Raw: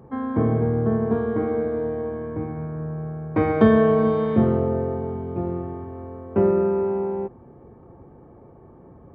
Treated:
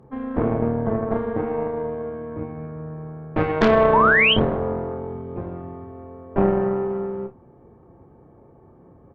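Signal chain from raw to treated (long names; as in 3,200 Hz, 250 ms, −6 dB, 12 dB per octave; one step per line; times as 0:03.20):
harmonic generator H 6 −7 dB, 8 −16 dB, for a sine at −4 dBFS
sound drawn into the spectrogram rise, 0:03.93–0:04.34, 850–3,300 Hz −13 dBFS
on a send: ambience of single reflections 30 ms −8.5 dB, 59 ms −18 dB
on the sum: level −3.5 dB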